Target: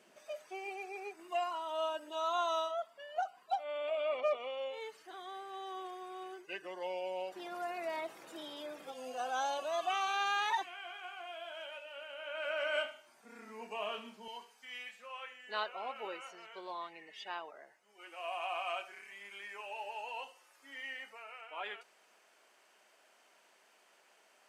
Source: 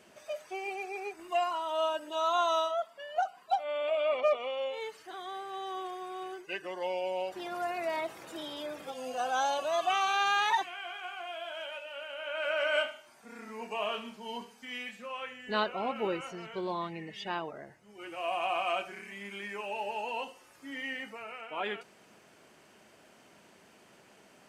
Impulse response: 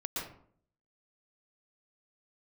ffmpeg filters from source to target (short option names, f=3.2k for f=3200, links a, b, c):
-af "asetnsamples=n=441:p=0,asendcmd='14.28 highpass f 610',highpass=190,volume=-5.5dB"